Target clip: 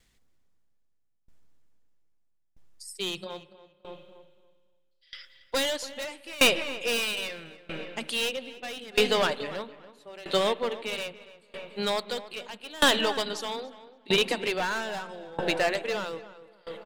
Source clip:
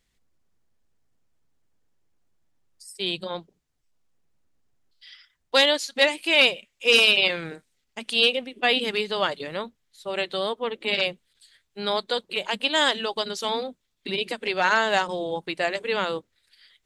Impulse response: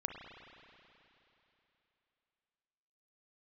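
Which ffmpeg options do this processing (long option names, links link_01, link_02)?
-filter_complex "[0:a]volume=22.5dB,asoftclip=hard,volume=-22.5dB,asplit=2[link_01][link_02];[link_02]adelay=285,lowpass=frequency=2400:poles=1,volume=-10dB,asplit=2[link_03][link_04];[link_04]adelay=285,lowpass=frequency=2400:poles=1,volume=0.43,asplit=2[link_05][link_06];[link_06]adelay=285,lowpass=frequency=2400:poles=1,volume=0.43,asplit=2[link_07][link_08];[link_08]adelay=285,lowpass=frequency=2400:poles=1,volume=0.43,asplit=2[link_09][link_10];[link_10]adelay=285,lowpass=frequency=2400:poles=1,volume=0.43[link_11];[link_01][link_03][link_05][link_07][link_09][link_11]amix=inputs=6:normalize=0,asplit=2[link_12][link_13];[1:a]atrim=start_sample=2205[link_14];[link_13][link_14]afir=irnorm=-1:irlink=0,volume=-10dB[link_15];[link_12][link_15]amix=inputs=2:normalize=0,aeval=exprs='val(0)*pow(10,-24*if(lt(mod(0.78*n/s,1),2*abs(0.78)/1000),1-mod(0.78*n/s,1)/(2*abs(0.78)/1000),(mod(0.78*n/s,1)-2*abs(0.78)/1000)/(1-2*abs(0.78)/1000))/20)':channel_layout=same,volume=5dB"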